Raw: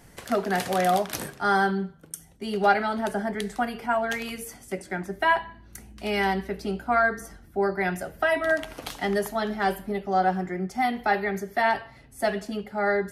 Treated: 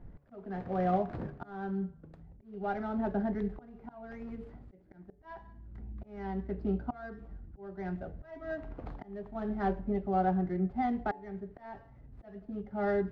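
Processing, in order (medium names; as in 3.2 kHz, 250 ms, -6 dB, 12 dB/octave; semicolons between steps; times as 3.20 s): median filter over 15 samples; low-pass 3.8 kHz 12 dB/octave; tilt EQ -3.5 dB/octave; slow attack 627 ms; de-hum 142.8 Hz, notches 6; trim -8.5 dB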